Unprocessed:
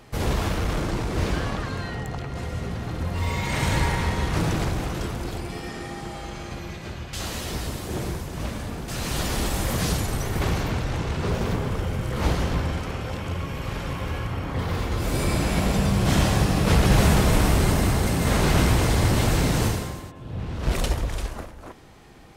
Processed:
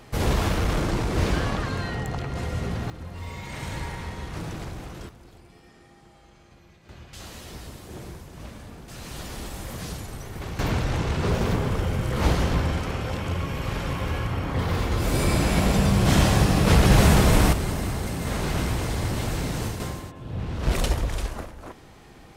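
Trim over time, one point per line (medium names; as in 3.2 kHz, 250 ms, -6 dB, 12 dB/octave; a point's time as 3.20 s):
+1.5 dB
from 2.90 s -10 dB
from 5.09 s -19 dB
from 6.89 s -10 dB
from 10.59 s +1.5 dB
from 17.53 s -6.5 dB
from 19.80 s +0.5 dB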